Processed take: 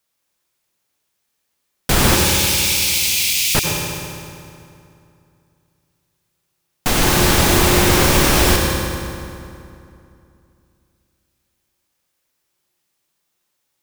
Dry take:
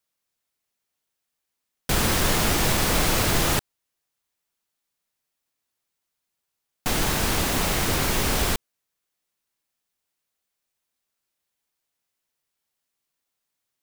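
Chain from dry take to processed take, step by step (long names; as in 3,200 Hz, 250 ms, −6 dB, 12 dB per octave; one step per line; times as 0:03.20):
0:02.15–0:03.55: elliptic high-pass filter 2,300 Hz, stop band 40 dB
convolution reverb RT60 2.6 s, pre-delay 85 ms, DRR 0.5 dB
level +7 dB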